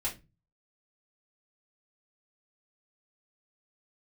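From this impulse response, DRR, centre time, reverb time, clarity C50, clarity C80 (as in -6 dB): -8.0 dB, 17 ms, 0.25 s, 13.5 dB, 21.0 dB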